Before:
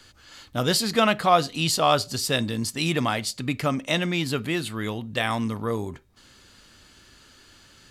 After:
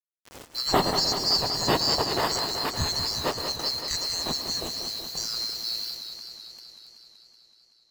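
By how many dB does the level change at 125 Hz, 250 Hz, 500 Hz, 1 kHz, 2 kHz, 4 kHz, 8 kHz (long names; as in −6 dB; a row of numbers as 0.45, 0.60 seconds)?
−8.0, −8.5, −5.5, −4.5, −7.5, +4.0, −0.5 decibels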